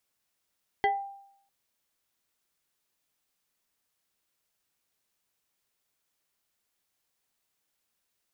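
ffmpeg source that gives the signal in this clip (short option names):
-f lavfi -i "aevalsrc='0.106*pow(10,-3*t/0.72)*sin(2*PI*793*t+1.2*pow(10,-3*t/0.29)*sin(2*PI*1.52*793*t))':d=0.65:s=44100"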